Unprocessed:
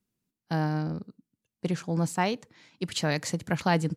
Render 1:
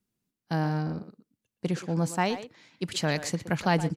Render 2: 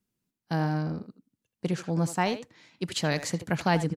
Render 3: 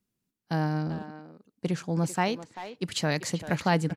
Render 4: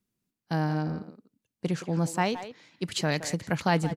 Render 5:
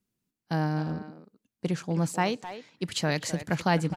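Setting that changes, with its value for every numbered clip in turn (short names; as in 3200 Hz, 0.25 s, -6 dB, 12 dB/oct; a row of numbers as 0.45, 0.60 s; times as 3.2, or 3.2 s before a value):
speakerphone echo, time: 120, 80, 390, 170, 260 ms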